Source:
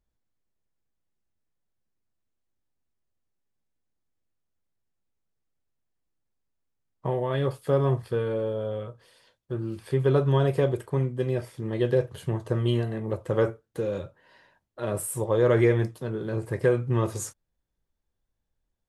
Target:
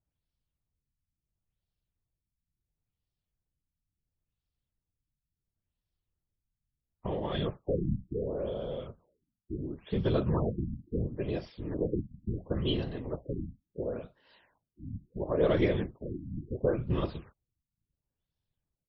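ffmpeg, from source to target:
-af "highshelf=f=2.4k:t=q:w=1.5:g=6.5,afftfilt=real='hypot(re,im)*cos(2*PI*random(0))':imag='hypot(re,im)*sin(2*PI*random(1))':win_size=512:overlap=0.75,afftfilt=real='re*lt(b*sr/1024,280*pow(5900/280,0.5+0.5*sin(2*PI*0.72*pts/sr)))':imag='im*lt(b*sr/1024,280*pow(5900/280,0.5+0.5*sin(2*PI*0.72*pts/sr)))':win_size=1024:overlap=0.75"

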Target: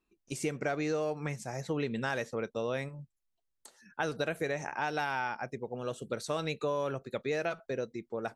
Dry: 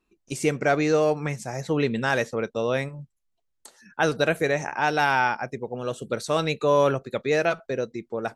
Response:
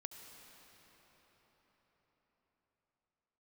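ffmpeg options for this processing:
-af "acompressor=threshold=-22dB:ratio=6,volume=-6.5dB"

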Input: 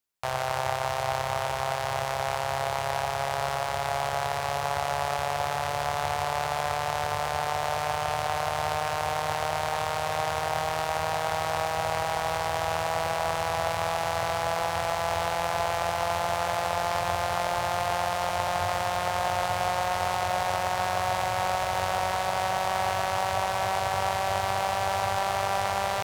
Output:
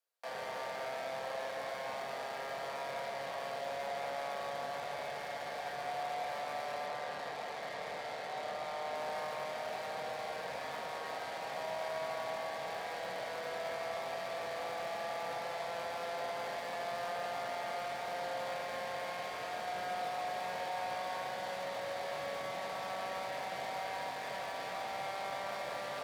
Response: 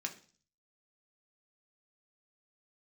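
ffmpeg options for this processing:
-filter_complex "[0:a]asettb=1/sr,asplit=3[a][b][c];[a]atrim=end=6.864[d];[b]atrim=start=6.86:end=8.95,asetpts=PTS-STARTPTS,afade=t=in:d=0.004:c=qsin,afade=t=out:st=2.086:d=0.004:c=qsin,lowpass=f=2k:p=1[e];[c]atrim=start=8.946[f];[d][e]acrossfade=d=0.004:c1=hsin:c2=qsin[g];[g][f]acrossfade=d=0.004:c1=qsin:c2=hsin,asoftclip=type=tanh:threshold=-22.5dB,highpass=f=530:t=q:w=4.2,volume=34.5dB,asoftclip=hard,volume=-34.5dB[h];[1:a]atrim=start_sample=2205,asetrate=29988,aresample=44100[i];[h][i]afir=irnorm=-1:irlink=0,volume=-6dB"

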